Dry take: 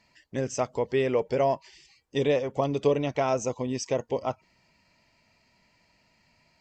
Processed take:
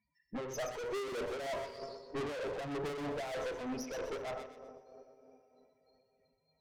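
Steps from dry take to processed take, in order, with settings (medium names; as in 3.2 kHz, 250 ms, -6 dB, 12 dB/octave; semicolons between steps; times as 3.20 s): spectral noise reduction 17 dB; dynamic bell 720 Hz, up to -5 dB, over -34 dBFS, Q 0.99; low-pass that closes with the level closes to 2.1 kHz, closed at -28 dBFS; loudest bins only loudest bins 8; in parallel at -8 dB: hard clipper -28.5 dBFS, distortion -9 dB; on the sum: two-slope reverb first 0.51 s, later 3.8 s, from -20 dB, DRR 5.5 dB; valve stage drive 42 dB, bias 0.65; tremolo 3.2 Hz, depth 46%; on a send: feedback echo behind a high-pass 125 ms, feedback 34%, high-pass 1.8 kHz, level -6.5 dB; on the sum: trim +7 dB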